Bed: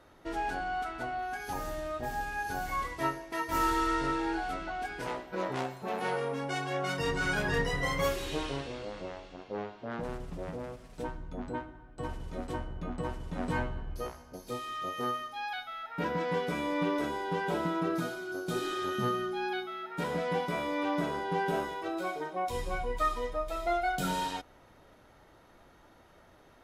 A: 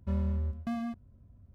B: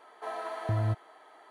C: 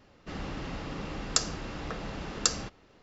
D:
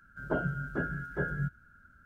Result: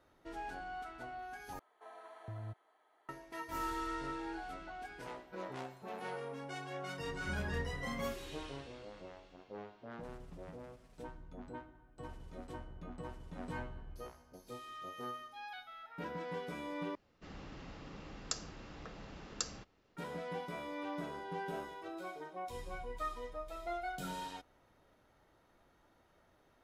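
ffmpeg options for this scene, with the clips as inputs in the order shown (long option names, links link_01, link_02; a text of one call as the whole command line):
ffmpeg -i bed.wav -i cue0.wav -i cue1.wav -i cue2.wav -filter_complex "[0:a]volume=-10.5dB[link_01];[2:a]bandreject=frequency=4800:width=6.7[link_02];[link_01]asplit=3[link_03][link_04][link_05];[link_03]atrim=end=1.594[link_06];[link_02]atrim=end=1.5,asetpts=PTS-STARTPTS,volume=-16.5dB[link_07];[link_04]atrim=start=3.086:end=16.954[link_08];[3:a]atrim=end=3.02,asetpts=PTS-STARTPTS,volume=-12.5dB[link_09];[link_05]atrim=start=19.966[link_10];[1:a]atrim=end=1.54,asetpts=PTS-STARTPTS,volume=-11dB,afade=type=in:duration=0.004:curve=hsin,afade=type=out:start_time=1.536:duration=0.004:curve=hsin,adelay=7200[link_11];[link_06][link_07]acrossfade=duration=0.004:curve1=hsin:curve2=hsin[link_12];[link_12][link_08]acrossfade=duration=0.004:curve1=hsin:curve2=hsin[link_13];[link_13][link_09]acrossfade=duration=0.004:curve1=hsin:curve2=hsin[link_14];[link_14][link_10]acrossfade=duration=0.004:curve1=hsin:curve2=hsin[link_15];[link_15][link_11]amix=inputs=2:normalize=0" out.wav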